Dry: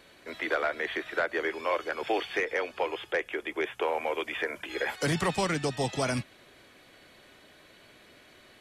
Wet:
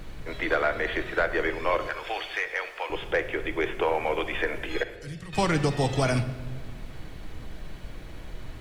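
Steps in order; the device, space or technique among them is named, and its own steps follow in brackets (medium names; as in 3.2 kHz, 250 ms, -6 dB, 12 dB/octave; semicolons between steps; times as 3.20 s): car interior (peaking EQ 100 Hz +7.5 dB 0.85 oct; treble shelf 4.5 kHz -5 dB; brown noise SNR 10 dB); 1.87–2.90 s: Bessel high-pass 1.1 kHz, order 2; 4.83–5.33 s: amplifier tone stack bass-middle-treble 6-0-2; simulated room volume 1300 m³, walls mixed, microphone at 0.58 m; trim +3.5 dB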